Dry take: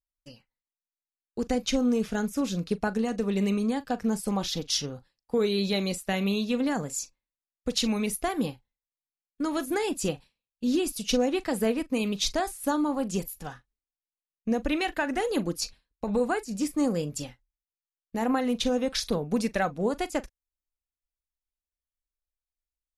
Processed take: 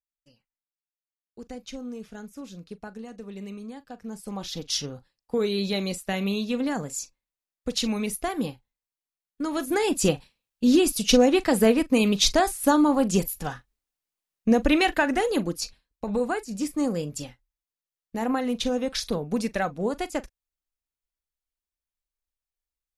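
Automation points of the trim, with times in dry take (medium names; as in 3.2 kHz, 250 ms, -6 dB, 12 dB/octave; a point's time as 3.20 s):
3.97 s -12 dB
4.74 s 0 dB
9.48 s 0 dB
10.04 s +7 dB
14.89 s +7 dB
15.62 s 0 dB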